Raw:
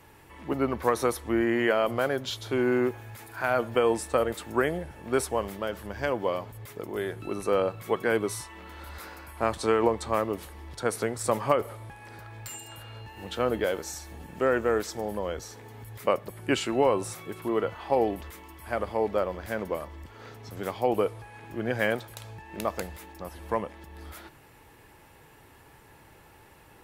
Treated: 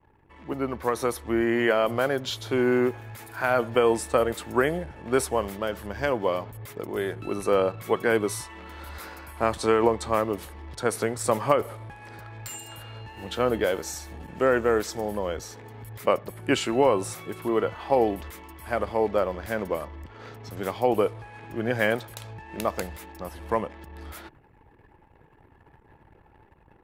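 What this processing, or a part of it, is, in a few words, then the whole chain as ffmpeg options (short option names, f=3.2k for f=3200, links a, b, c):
voice memo with heavy noise removal: -af "anlmdn=0.00251,dynaudnorm=f=810:g=3:m=5.5dB,volume=-2.5dB"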